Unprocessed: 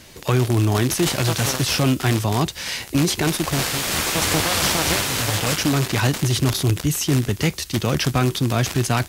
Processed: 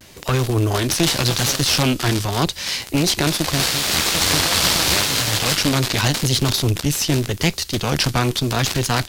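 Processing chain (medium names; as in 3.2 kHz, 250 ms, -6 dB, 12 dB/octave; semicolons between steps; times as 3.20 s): Chebyshev shaper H 4 -13 dB, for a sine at -6.5 dBFS; vibrato 0.83 Hz 66 cents; dynamic bell 4.3 kHz, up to +6 dB, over -36 dBFS, Q 1.4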